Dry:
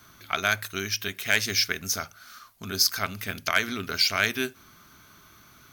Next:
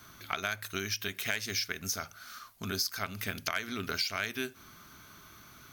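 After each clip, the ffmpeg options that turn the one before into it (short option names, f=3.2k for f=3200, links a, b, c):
-af "acompressor=threshold=-31dB:ratio=4"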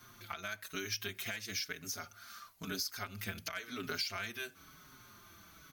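-filter_complex "[0:a]alimiter=limit=-20.5dB:level=0:latency=1:release=326,asplit=2[a][b];[b]adelay=5.1,afreqshift=-1[c];[a][c]amix=inputs=2:normalize=1,volume=-1dB"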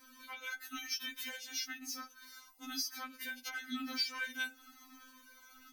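-af "afftfilt=real='re*3.46*eq(mod(b,12),0)':imag='im*3.46*eq(mod(b,12),0)':win_size=2048:overlap=0.75,volume=1.5dB"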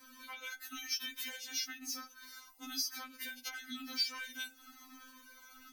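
-filter_complex "[0:a]acrossover=split=120|3000[a][b][c];[b]acompressor=threshold=-47dB:ratio=6[d];[a][d][c]amix=inputs=3:normalize=0,volume=2dB"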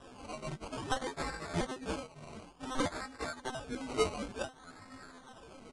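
-af "acrusher=samples=20:mix=1:aa=0.000001:lfo=1:lforange=12:lforate=0.56,aresample=22050,aresample=44100,volume=4.5dB"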